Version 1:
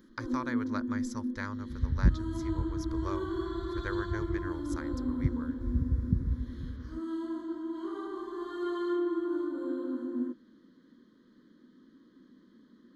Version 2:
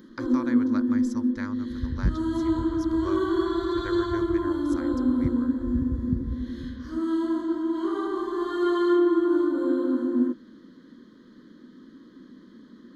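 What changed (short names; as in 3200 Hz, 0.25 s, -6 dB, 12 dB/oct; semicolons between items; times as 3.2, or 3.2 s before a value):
first sound +10.0 dB; second sound: add elliptic low-pass 610 Hz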